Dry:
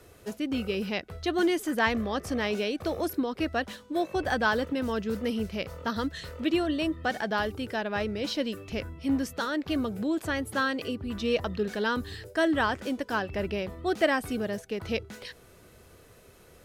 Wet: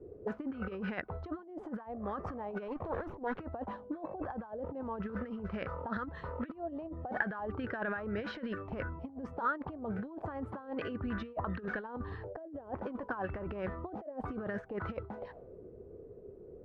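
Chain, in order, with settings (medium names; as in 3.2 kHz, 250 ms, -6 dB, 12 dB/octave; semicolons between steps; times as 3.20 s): 2.68–3.40 s: comb filter that takes the minimum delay 0.3 ms; compressor with a negative ratio -33 dBFS, ratio -0.5; touch-sensitive low-pass 340–1600 Hz up, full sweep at -28.5 dBFS; trim -6 dB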